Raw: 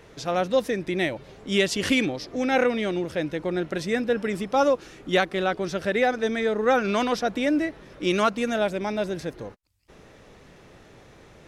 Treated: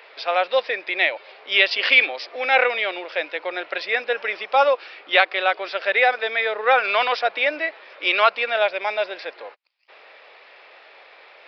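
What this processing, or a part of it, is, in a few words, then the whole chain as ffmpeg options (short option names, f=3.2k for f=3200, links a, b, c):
musical greeting card: -af "aresample=11025,aresample=44100,highpass=f=570:w=0.5412,highpass=f=570:w=1.3066,equalizer=f=2.4k:t=o:w=0.49:g=7,volume=6dB"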